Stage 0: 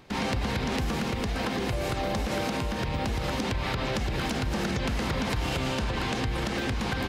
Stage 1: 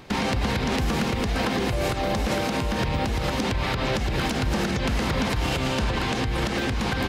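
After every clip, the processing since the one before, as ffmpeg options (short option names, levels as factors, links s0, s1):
-af "alimiter=limit=0.075:level=0:latency=1:release=270,volume=2.37"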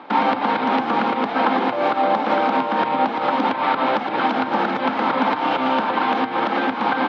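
-af "highpass=f=260:w=0.5412,highpass=f=260:w=1.3066,equalizer=f=270:t=q:w=4:g=4,equalizer=f=390:t=q:w=4:g=-8,equalizer=f=870:t=q:w=4:g=9,equalizer=f=1300:t=q:w=4:g=5,equalizer=f=1900:t=q:w=4:g=-5,equalizer=f=2700:t=q:w=4:g=-6,lowpass=f=3100:w=0.5412,lowpass=f=3100:w=1.3066,volume=2.11"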